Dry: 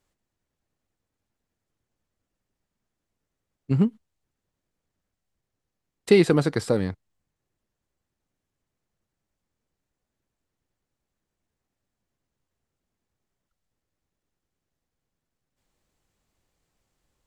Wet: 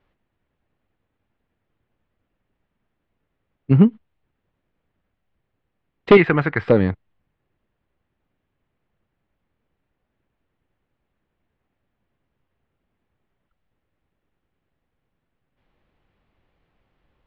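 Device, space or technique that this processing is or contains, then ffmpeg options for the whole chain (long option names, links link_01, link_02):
synthesiser wavefolder: -filter_complex "[0:a]asettb=1/sr,asplit=3[link_01][link_02][link_03];[link_01]atrim=end=6.174[link_04];[link_02]atrim=start=6.17:end=6.68,asetpts=PTS-STARTPTS,afade=type=in:duration=0.004:curve=qsin,afade=type=out:start_time=0.506:duration=0.004:curve=qsin,equalizer=frequency=125:width_type=o:width=1:gain=-4,equalizer=frequency=250:width_type=o:width=1:gain=-7,equalizer=frequency=500:width_type=o:width=1:gain=-8,equalizer=frequency=2000:width_type=o:width=1:gain=7,equalizer=frequency=4000:width_type=o:width=1:gain=-8,equalizer=frequency=8000:width_type=o:width=1:gain=-7[link_05];[link_03]atrim=start=6.676[link_06];[link_04][link_05]acrossfade=duration=0.004:curve1=hsin:curve2=qsin[link_07];[link_07][link_06]acrossfade=duration=0.004:curve1=qsin:curve2=hsin,aeval=exprs='0.299*(abs(mod(val(0)/0.299+3,4)-2)-1)':channel_layout=same,lowpass=frequency=3100:width=0.5412,lowpass=frequency=3100:width=1.3066,volume=8dB"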